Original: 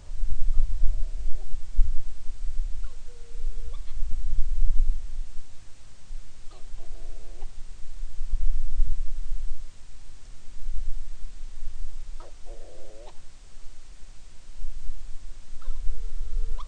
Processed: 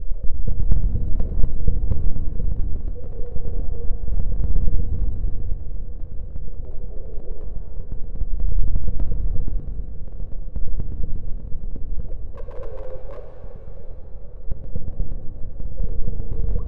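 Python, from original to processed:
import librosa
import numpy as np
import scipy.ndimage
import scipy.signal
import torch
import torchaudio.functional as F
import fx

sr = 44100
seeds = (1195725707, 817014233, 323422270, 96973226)

p1 = fx.block_reorder(x, sr, ms=120.0, group=2)
p2 = fx.low_shelf(p1, sr, hz=290.0, db=-9.0)
p3 = np.clip(p2, -10.0 ** (-23.5 / 20.0), 10.0 ** (-23.5 / 20.0))
p4 = p2 + (p3 * librosa.db_to_amplitude(-5.0))
p5 = fx.lowpass_res(p4, sr, hz=490.0, q=3.8)
p6 = fx.low_shelf(p5, sr, hz=120.0, db=7.0)
p7 = fx.echo_swing(p6, sr, ms=1125, ratio=1.5, feedback_pct=63, wet_db=-13)
p8 = fx.spec_topn(p7, sr, count=16)
p9 = np.abs(p8)
p10 = fx.rev_shimmer(p9, sr, seeds[0], rt60_s=1.9, semitones=7, shimmer_db=-8, drr_db=5.0)
y = p10 * librosa.db_to_amplitude(2.5)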